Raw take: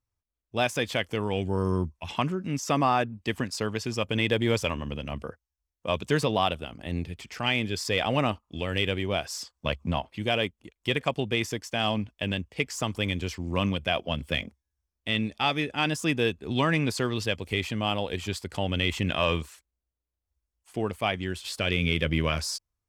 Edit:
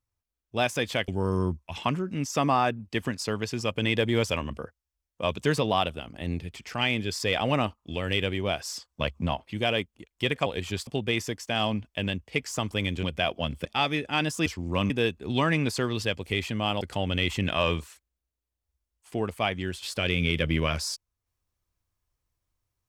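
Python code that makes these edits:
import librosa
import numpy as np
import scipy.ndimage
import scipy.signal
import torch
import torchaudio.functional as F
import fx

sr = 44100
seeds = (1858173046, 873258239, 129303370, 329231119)

y = fx.edit(x, sr, fx.cut(start_s=1.08, length_s=0.33),
    fx.cut(start_s=4.83, length_s=0.32),
    fx.move(start_s=13.27, length_s=0.44, to_s=16.11),
    fx.cut(start_s=14.33, length_s=0.97),
    fx.move(start_s=18.02, length_s=0.41, to_s=11.11), tone=tone)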